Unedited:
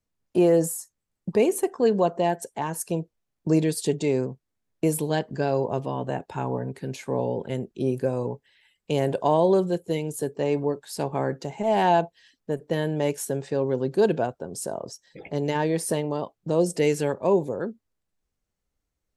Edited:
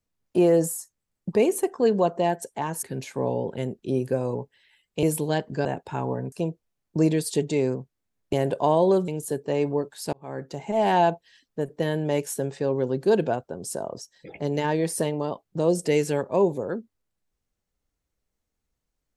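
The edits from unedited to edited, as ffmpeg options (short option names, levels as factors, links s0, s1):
-filter_complex "[0:a]asplit=8[s0][s1][s2][s3][s4][s5][s6][s7];[s0]atrim=end=2.832[s8];[s1]atrim=start=6.748:end=8.952[s9];[s2]atrim=start=4.838:end=5.462[s10];[s3]atrim=start=6.078:end=6.752[s11];[s4]atrim=start=2.828:end=4.842[s12];[s5]atrim=start=8.948:end=9.702[s13];[s6]atrim=start=9.988:end=11.04,asetpts=PTS-STARTPTS,afade=t=out:st=1.048:d=0.004:c=hsin[s14];[s7]atrim=start=11.04,asetpts=PTS-STARTPTS,afade=t=in:d=0.52[s15];[s8][s9]acrossfade=d=0.004:c1=hsin:c2=hsin[s16];[s16][s10]acrossfade=d=0.004:c1=hsin:c2=hsin[s17];[s17][s11]acrossfade=d=0.004:c1=hsin:c2=hsin[s18];[s18][s12]acrossfade=d=0.004:c1=hsin:c2=hsin[s19];[s19][s13]acrossfade=d=0.004:c1=hsin:c2=hsin[s20];[s14][s15]concat=n=2:v=0:a=1[s21];[s20][s21]acrossfade=d=0.004:c1=hsin:c2=hsin"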